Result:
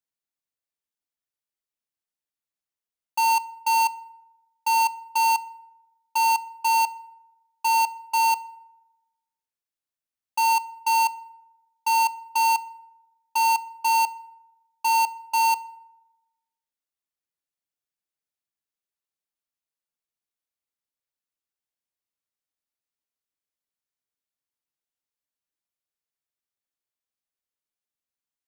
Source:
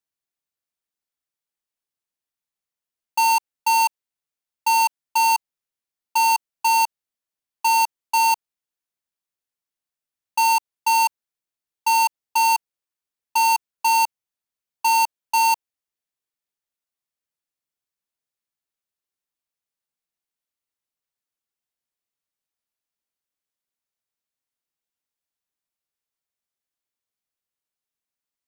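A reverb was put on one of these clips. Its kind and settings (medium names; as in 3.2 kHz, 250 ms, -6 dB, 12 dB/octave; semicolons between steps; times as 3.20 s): FDN reverb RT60 1 s, low-frequency decay 0.95×, high-frequency decay 0.5×, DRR 15.5 dB; trim -4.5 dB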